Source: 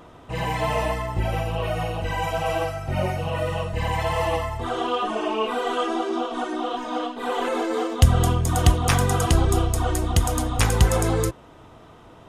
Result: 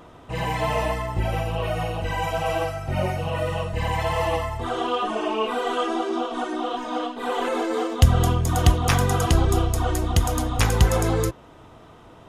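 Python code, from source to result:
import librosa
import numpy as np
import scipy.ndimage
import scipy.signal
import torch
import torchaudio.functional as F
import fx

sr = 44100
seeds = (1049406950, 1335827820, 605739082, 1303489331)

y = fx.dynamic_eq(x, sr, hz=8700.0, q=3.6, threshold_db=-48.0, ratio=4.0, max_db=-6)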